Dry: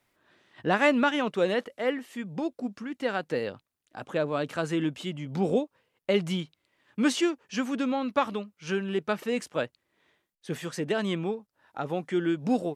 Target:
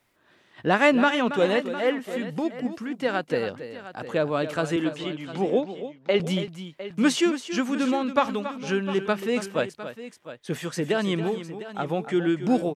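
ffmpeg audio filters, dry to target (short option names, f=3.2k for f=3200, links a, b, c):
-filter_complex "[0:a]asettb=1/sr,asplit=3[a][b][c];[a]atrim=end=4.764[d];[b]atrim=start=4.76:end=6.2,asetpts=PTS-STARTPTS,afade=t=in:d=0.004:c=qsin,afade=t=out:st=1.436:d=0.004:c=qsin,highpass=250,lowpass=4.7k[e];[c]atrim=start=6.196[f];[d][e]acrossfade=d=0.004:c1=hsin:c2=qsin[g];[g][f]acrossfade=d=0.004:c1=qsin:c2=hsin,aecho=1:1:278|706:0.266|0.2,volume=3.5dB"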